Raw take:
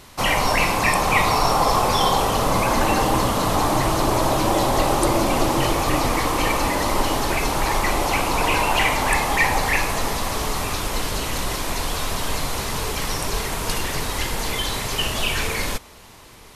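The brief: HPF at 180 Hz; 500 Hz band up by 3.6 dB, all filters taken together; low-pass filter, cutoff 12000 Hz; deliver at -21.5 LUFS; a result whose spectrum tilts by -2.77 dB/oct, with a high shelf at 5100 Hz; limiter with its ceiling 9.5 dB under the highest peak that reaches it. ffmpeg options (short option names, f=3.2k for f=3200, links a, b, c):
-af "highpass=180,lowpass=12k,equalizer=f=500:t=o:g=4.5,highshelf=f=5.1k:g=8,volume=-1dB,alimiter=limit=-12dB:level=0:latency=1"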